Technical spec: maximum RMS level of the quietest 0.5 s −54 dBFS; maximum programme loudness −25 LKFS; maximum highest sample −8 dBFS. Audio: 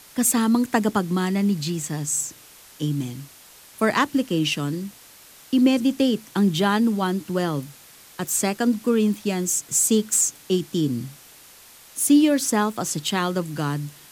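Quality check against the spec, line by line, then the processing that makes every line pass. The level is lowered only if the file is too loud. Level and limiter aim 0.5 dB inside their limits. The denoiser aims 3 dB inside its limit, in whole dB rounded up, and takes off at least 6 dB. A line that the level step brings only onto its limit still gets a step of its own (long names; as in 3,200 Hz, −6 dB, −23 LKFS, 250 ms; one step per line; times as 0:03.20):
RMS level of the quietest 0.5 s −48 dBFS: out of spec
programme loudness −22.0 LKFS: out of spec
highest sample −6.5 dBFS: out of spec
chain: broadband denoise 6 dB, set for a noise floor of −48 dBFS
level −3.5 dB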